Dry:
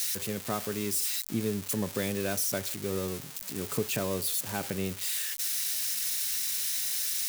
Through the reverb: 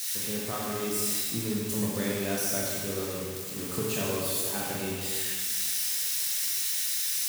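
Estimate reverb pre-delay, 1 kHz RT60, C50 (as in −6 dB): 18 ms, 1.8 s, −1.5 dB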